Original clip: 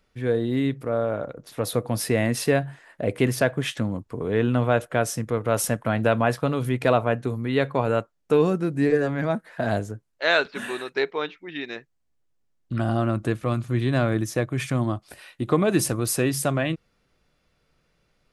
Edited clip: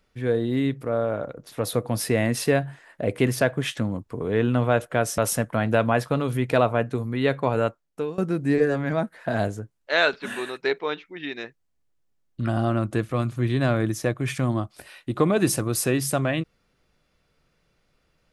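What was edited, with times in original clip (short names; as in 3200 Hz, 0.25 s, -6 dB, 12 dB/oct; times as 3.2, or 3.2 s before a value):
5.18–5.5 cut
7.98–8.5 fade out, to -21.5 dB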